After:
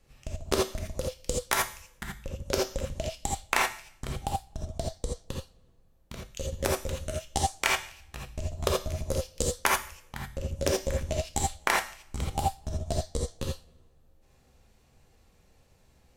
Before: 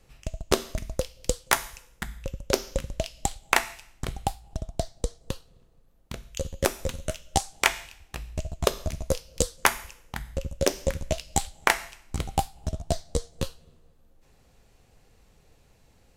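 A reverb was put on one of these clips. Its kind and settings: non-linear reverb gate 0.1 s rising, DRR -1.5 dB; gain -6 dB

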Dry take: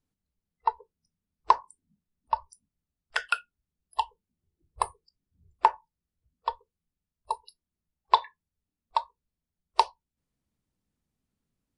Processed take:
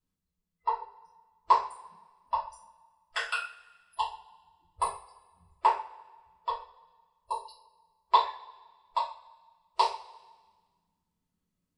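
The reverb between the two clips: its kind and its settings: two-slope reverb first 0.37 s, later 1.5 s, from -21 dB, DRR -10 dB; gain -11.5 dB

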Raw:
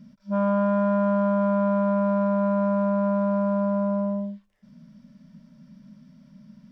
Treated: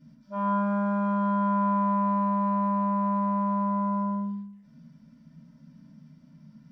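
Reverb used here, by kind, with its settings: FDN reverb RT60 0.56 s, low-frequency decay 1.3×, high-frequency decay 0.55×, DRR -9 dB; gain -12 dB

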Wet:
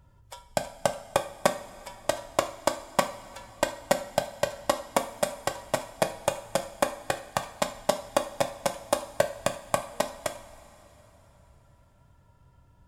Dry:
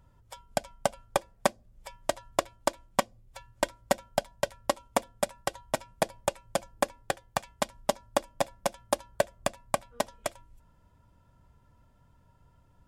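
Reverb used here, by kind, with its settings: two-slope reverb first 0.42 s, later 3.9 s, from -17 dB, DRR 6 dB; gain +1.5 dB

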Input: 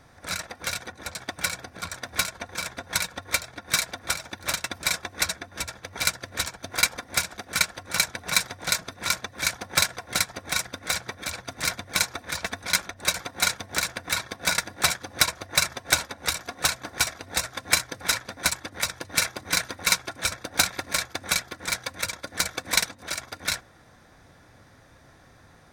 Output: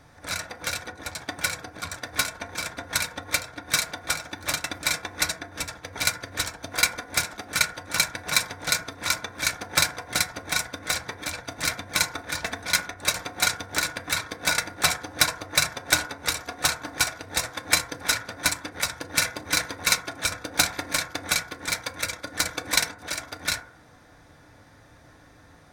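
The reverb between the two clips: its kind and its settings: FDN reverb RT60 0.57 s, low-frequency decay 0.85×, high-frequency decay 0.3×, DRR 6.5 dB

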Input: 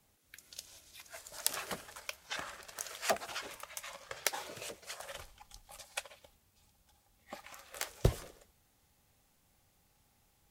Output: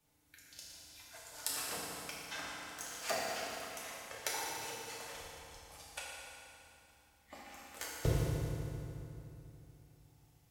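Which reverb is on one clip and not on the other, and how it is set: FDN reverb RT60 2.9 s, low-frequency decay 1.3×, high-frequency decay 0.8×, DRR -6.5 dB; gain -8 dB

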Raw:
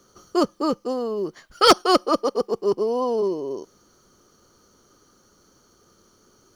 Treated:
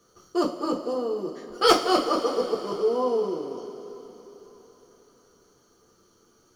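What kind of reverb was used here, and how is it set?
two-slope reverb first 0.28 s, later 4.2 s, from -18 dB, DRR -2 dB; gain -7.5 dB

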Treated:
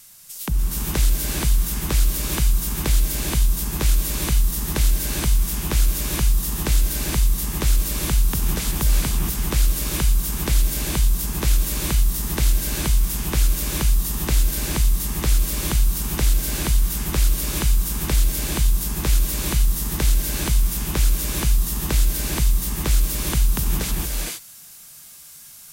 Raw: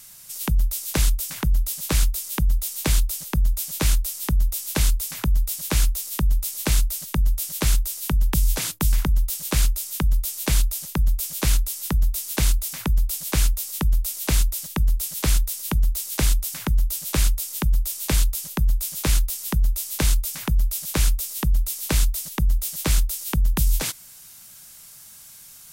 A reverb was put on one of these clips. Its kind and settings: non-linear reverb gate 0.49 s rising, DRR -1.5 dB; gain -2 dB

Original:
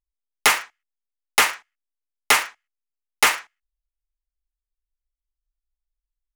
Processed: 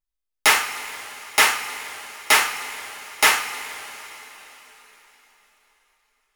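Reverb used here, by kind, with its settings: two-slope reverb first 0.39 s, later 4.2 s, from -18 dB, DRR -2.5 dB; gain -2.5 dB

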